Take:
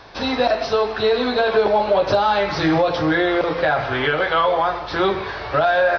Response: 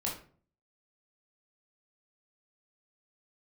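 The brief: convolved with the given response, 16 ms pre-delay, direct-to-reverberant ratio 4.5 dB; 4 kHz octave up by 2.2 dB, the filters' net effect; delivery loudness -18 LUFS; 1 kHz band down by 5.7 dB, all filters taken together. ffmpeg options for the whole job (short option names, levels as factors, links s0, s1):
-filter_complex "[0:a]equalizer=f=1000:t=o:g=-8.5,equalizer=f=4000:t=o:g=3,asplit=2[s0][s1];[1:a]atrim=start_sample=2205,adelay=16[s2];[s1][s2]afir=irnorm=-1:irlink=0,volume=0.398[s3];[s0][s3]amix=inputs=2:normalize=0,volume=1.12"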